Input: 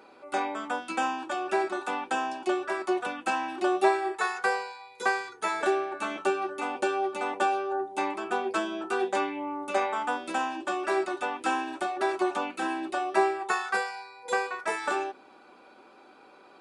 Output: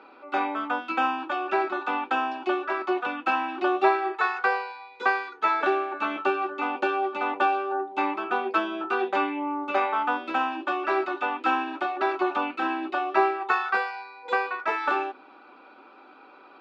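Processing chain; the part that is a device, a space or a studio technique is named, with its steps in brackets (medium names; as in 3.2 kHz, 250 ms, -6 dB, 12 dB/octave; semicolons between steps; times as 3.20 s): kitchen radio (cabinet simulation 230–4300 Hz, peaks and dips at 280 Hz +7 dB, 880 Hz +4 dB, 1.3 kHz +8 dB, 2.6 kHz +5 dB)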